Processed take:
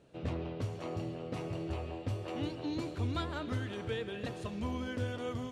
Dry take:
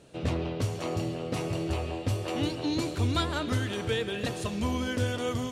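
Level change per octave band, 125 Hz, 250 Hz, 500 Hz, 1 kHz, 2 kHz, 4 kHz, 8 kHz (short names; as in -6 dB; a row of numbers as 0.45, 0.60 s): -7.0, -7.0, -7.0, -7.5, -8.5, -11.0, -15.0 dB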